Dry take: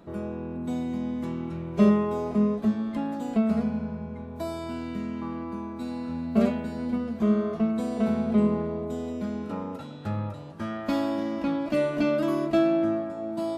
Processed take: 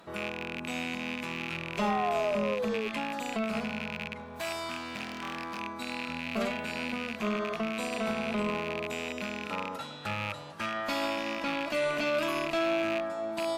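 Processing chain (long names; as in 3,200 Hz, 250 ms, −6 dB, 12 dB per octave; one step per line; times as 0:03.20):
loose part that buzzes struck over −34 dBFS, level −30 dBFS
0:01.81–0:02.88: sound drawn into the spectrogram fall 420–850 Hz −28 dBFS
0:04.13–0:05.60: hard clipping −32.5 dBFS, distortion −25 dB
spectral tilt +4 dB per octave
tube saturation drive 20 dB, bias 0.25
brickwall limiter −24.5 dBFS, peak gain reduction 5.5 dB
low-pass filter 2,800 Hz 6 dB per octave
parametric band 310 Hz −6 dB 1.6 octaves
level +6 dB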